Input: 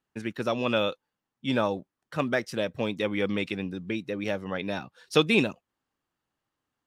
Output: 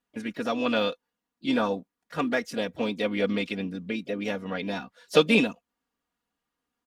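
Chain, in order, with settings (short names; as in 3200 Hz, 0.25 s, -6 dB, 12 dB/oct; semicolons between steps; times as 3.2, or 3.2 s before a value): comb 4.2 ms, depth 77%; harmoniser +3 st -15 dB, +5 st -17 dB; added harmonics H 7 -35 dB, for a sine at -4 dBFS; gain -1 dB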